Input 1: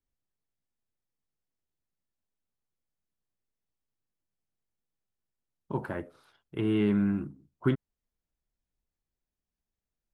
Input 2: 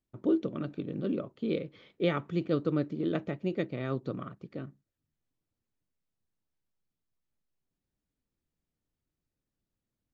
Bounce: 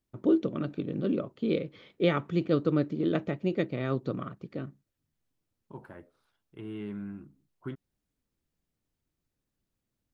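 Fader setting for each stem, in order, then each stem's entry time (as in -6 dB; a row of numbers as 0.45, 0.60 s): -12.5, +3.0 dB; 0.00, 0.00 s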